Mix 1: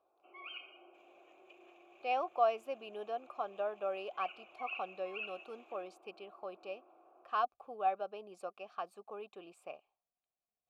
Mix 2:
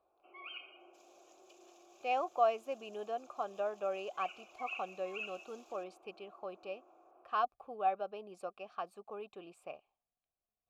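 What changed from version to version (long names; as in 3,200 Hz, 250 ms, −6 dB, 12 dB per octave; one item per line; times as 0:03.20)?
speech: add low-shelf EQ 130 Hz +12 dB
second sound: add high shelf with overshoot 3,600 Hz +14 dB, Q 3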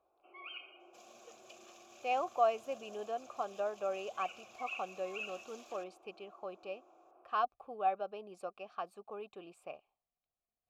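second sound: remove guitar amp tone stack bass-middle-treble 5-5-5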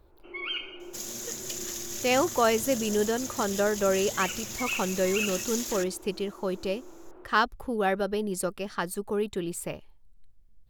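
master: remove formant filter a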